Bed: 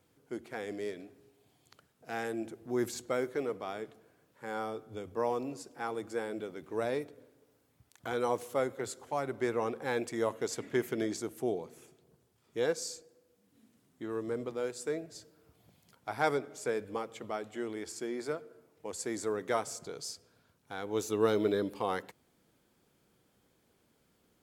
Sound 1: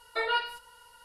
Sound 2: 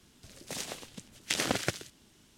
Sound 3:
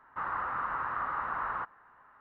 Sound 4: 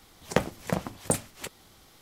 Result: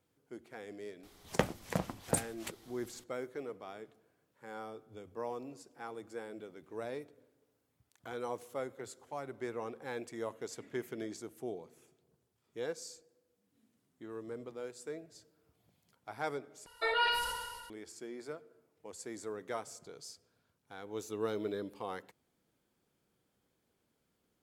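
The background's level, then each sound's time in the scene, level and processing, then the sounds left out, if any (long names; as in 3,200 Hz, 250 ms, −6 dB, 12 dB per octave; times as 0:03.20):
bed −8 dB
0:01.03: mix in 4 −5.5 dB
0:16.66: overwrite with 1 −3 dB + level that may fall only so fast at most 37 dB per second
not used: 2, 3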